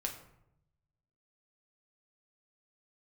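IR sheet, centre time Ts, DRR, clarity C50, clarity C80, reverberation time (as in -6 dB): 19 ms, 1.5 dB, 8.5 dB, 11.5 dB, 0.80 s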